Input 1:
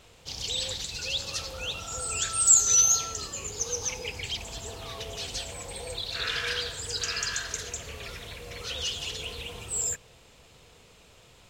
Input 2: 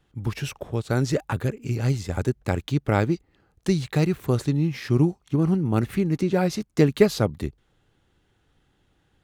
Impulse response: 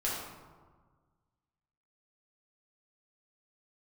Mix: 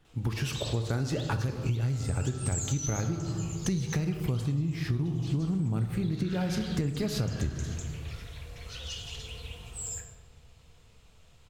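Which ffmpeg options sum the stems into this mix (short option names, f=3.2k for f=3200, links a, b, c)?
-filter_complex "[0:a]adelay=50,volume=-12.5dB,asplit=2[a][b];[b]volume=-5dB[c];[1:a]alimiter=limit=-14.5dB:level=0:latency=1:release=31,volume=-1.5dB,asplit=2[d][e];[e]volume=-9dB[f];[2:a]atrim=start_sample=2205[g];[c][f]amix=inputs=2:normalize=0[h];[h][g]afir=irnorm=-1:irlink=0[i];[a][d][i]amix=inputs=3:normalize=0,asubboost=boost=3:cutoff=180,acompressor=threshold=-26dB:ratio=10"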